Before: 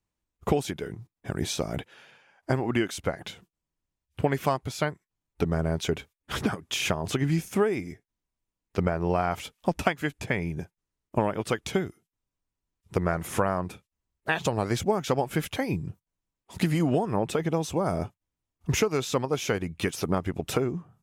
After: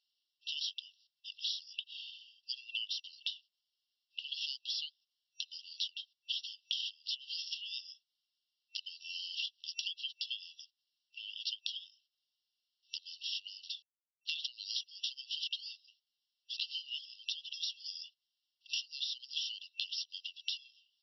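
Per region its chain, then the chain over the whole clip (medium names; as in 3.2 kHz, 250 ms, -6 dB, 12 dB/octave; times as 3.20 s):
13.63–14.47 s: companded quantiser 6-bit + overload inside the chain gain 19.5 dB
whole clip: FFT band-pass 2.7–5.7 kHz; compression 12:1, threshold -48 dBFS; trim +13 dB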